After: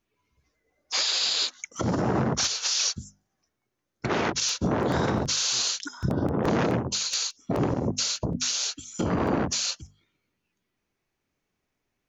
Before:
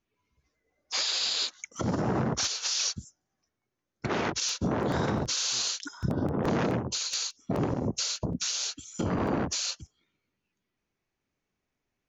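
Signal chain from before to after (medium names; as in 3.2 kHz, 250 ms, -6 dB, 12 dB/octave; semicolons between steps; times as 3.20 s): hum notches 50/100/150/200/250 Hz; trim +3.5 dB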